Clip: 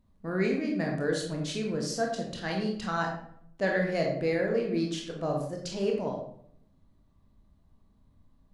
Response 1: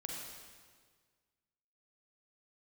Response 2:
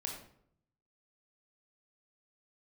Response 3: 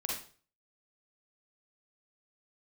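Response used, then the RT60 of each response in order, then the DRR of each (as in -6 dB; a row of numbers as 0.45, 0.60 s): 2; 1.7, 0.65, 0.40 s; -1.5, 0.0, -3.0 dB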